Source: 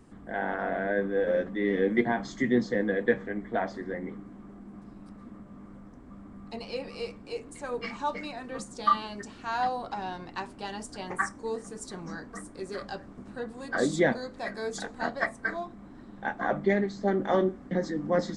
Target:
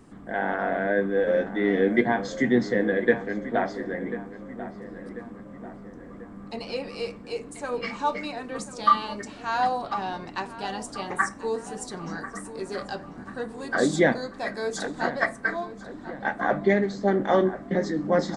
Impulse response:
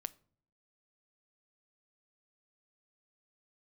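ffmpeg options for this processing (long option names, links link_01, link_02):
-filter_complex "[0:a]asplit=2[link_01][link_02];[link_02]adelay=1041,lowpass=frequency=2600:poles=1,volume=-13.5dB,asplit=2[link_03][link_04];[link_04]adelay=1041,lowpass=frequency=2600:poles=1,volume=0.52,asplit=2[link_05][link_06];[link_06]adelay=1041,lowpass=frequency=2600:poles=1,volume=0.52,asplit=2[link_07][link_08];[link_08]adelay=1041,lowpass=frequency=2600:poles=1,volume=0.52,asplit=2[link_09][link_10];[link_10]adelay=1041,lowpass=frequency=2600:poles=1,volume=0.52[link_11];[link_01][link_03][link_05][link_07][link_09][link_11]amix=inputs=6:normalize=0,asplit=2[link_12][link_13];[1:a]atrim=start_sample=2205,lowshelf=frequency=76:gain=-9[link_14];[link_13][link_14]afir=irnorm=-1:irlink=0,volume=12.5dB[link_15];[link_12][link_15]amix=inputs=2:normalize=0,volume=-8dB"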